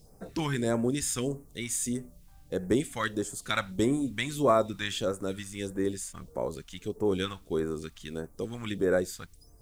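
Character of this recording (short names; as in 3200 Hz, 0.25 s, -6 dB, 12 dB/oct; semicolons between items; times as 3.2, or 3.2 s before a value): a quantiser's noise floor 12-bit, dither triangular; phasing stages 2, 1.6 Hz, lowest notch 390–3300 Hz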